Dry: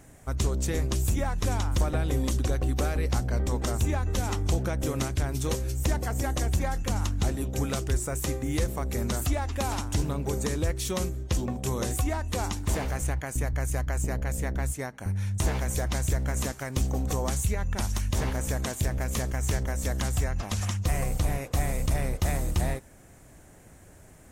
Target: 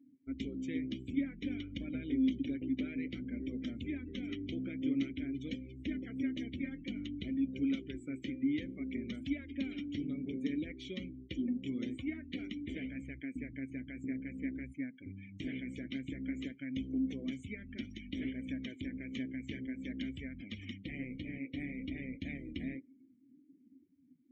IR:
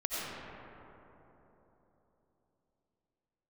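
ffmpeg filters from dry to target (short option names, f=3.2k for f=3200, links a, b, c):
-filter_complex "[0:a]flanger=delay=1.2:depth=7.7:regen=-48:speed=0.54:shape=sinusoidal,asplit=3[a][b][c];[a]bandpass=f=270:t=q:w=8,volume=0dB[d];[b]bandpass=f=2.29k:t=q:w=8,volume=-6dB[e];[c]bandpass=f=3.01k:t=q:w=8,volume=-9dB[f];[d][e][f]amix=inputs=3:normalize=0,afftdn=nr=29:nf=-61,volume=8dB"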